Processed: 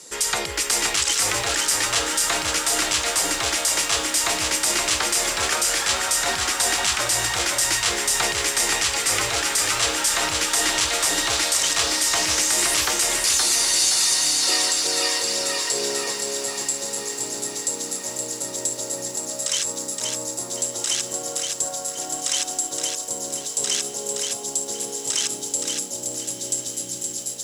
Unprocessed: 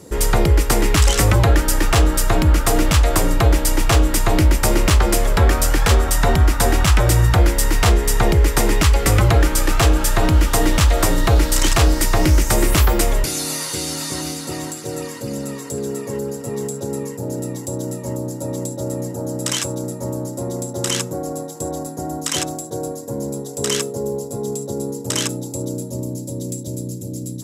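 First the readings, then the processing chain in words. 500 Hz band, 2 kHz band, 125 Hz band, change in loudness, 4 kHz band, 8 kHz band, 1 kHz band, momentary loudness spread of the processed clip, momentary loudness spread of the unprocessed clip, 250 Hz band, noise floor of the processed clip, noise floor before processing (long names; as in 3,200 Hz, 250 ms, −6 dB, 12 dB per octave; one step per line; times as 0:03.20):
−8.5 dB, +0.5 dB, −24.0 dB, −1.5 dB, +4.5 dB, +5.0 dB, −4.5 dB, 9 LU, 12 LU, −14.0 dB, −33 dBFS, −31 dBFS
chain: gain on a spectral selection 0:14.42–0:16.12, 320–5,900 Hz +7 dB
meter weighting curve ITU-R 468
brickwall limiter −7 dBFS, peak gain reduction 11 dB
on a send: feedback delay with all-pass diffusion 1,420 ms, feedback 56%, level −13.5 dB
on the sum: feedback echo at a low word length 520 ms, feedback 35%, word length 7 bits, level −4 dB
level −3.5 dB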